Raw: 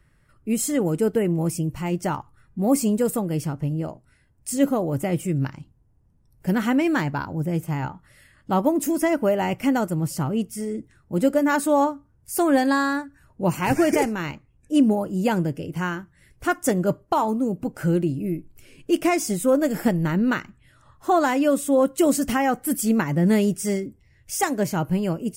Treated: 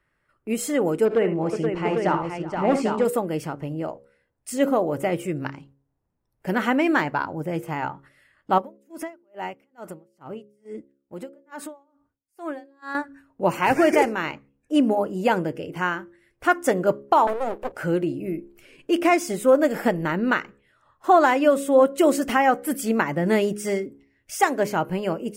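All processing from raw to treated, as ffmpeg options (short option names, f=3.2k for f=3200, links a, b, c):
-filter_complex "[0:a]asettb=1/sr,asplit=3[a][b][c];[a]atrim=end=1.054[d];[b]atrim=start=1.05:end=3.05,asetpts=PTS-STARTPTS,afade=t=in:d=0.004:c=qsin,afade=t=out:st=1.996:d=0.004:c=qsin,lowpass=4.9k,asoftclip=type=hard:threshold=-14.5dB,aecho=1:1:44|59|75|376|476|799:0.15|0.237|0.224|0.119|0.501|0.531,atrim=end_sample=88200[e];[c]atrim=start=3.046[f];[d][e]acrossfade=d=0.004:c1=hsin:c2=qsin[g];[g][f]acrossfade=d=0.004:c1=qsin:c2=hsin,asettb=1/sr,asplit=3[h][i][j];[h]atrim=end=8.584[k];[i]atrim=start=8.58:end=12.95,asetpts=PTS-STARTPTS,afade=t=in:d=0.004:c=qsin,afade=t=out:st=4.366:d=0.004:c=qsin,acompressor=threshold=-29dB:ratio=4:attack=3.2:release=140:knee=1:detection=peak,aeval=exprs='val(0)*pow(10,-33*(0.5-0.5*cos(2*PI*2.3*n/s))/20)':c=same[l];[j]atrim=start=12.946[m];[k][l]acrossfade=d=0.004:c1=hsin:c2=qsin[n];[n][m]acrossfade=d=0.004:c1=qsin:c2=hsin,asettb=1/sr,asplit=3[o][p][q];[o]atrim=end=17.274[r];[p]atrim=start=17.27:end=17.72,asetpts=PTS-STARTPTS,afade=t=in:d=0.004:c=qsin,afade=t=out:st=0.446:d=0.004:c=qsin,equalizer=f=73:w=2.4:g=-14.5,aeval=exprs='abs(val(0))':c=same[s];[q]atrim=start=17.716[t];[r][s]acrossfade=d=0.004:c1=hsin:c2=qsin[u];[u][t]acrossfade=d=0.004:c1=qsin:c2=hsin,agate=range=-8dB:threshold=-49dB:ratio=16:detection=peak,bass=f=250:g=-14,treble=f=4k:g=-10,bandreject=f=69.06:t=h:w=4,bandreject=f=138.12:t=h:w=4,bandreject=f=207.18:t=h:w=4,bandreject=f=276.24:t=h:w=4,bandreject=f=345.3:t=h:w=4,bandreject=f=414.36:t=h:w=4,bandreject=f=483.42:t=h:w=4,bandreject=f=552.48:t=h:w=4,volume=4.5dB"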